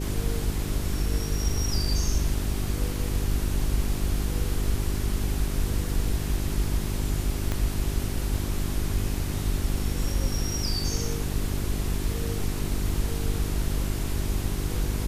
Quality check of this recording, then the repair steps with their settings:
hum 50 Hz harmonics 8 -30 dBFS
7.52 pop -14 dBFS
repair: de-click; de-hum 50 Hz, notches 8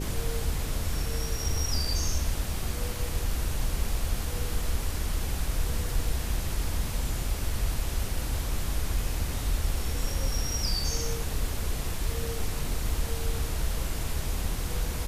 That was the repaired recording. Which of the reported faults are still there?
7.52 pop

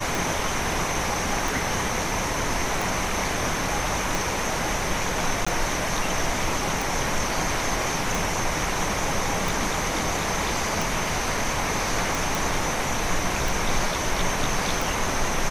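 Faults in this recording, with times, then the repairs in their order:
tick 45 rpm
5.45–5.46 gap 15 ms
12.35 pop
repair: de-click; interpolate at 5.45, 15 ms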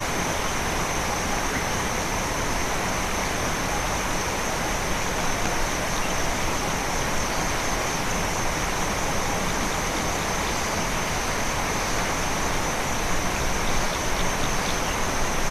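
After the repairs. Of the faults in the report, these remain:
none

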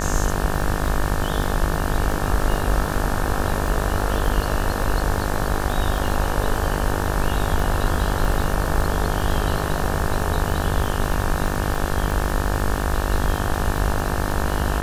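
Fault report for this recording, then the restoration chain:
buzz 50 Hz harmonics 36 -26 dBFS
crackle 27/s -24 dBFS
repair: de-click; de-hum 50 Hz, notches 36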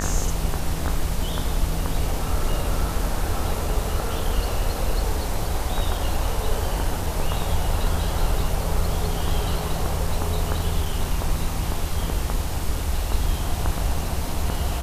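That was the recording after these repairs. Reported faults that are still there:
none

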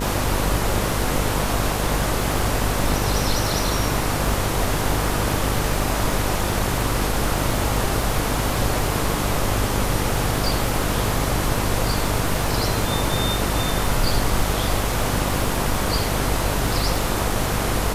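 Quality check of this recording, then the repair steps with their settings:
buzz 50 Hz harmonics 20 -26 dBFS
crackle 50/s -26 dBFS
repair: de-click; de-hum 50 Hz, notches 20

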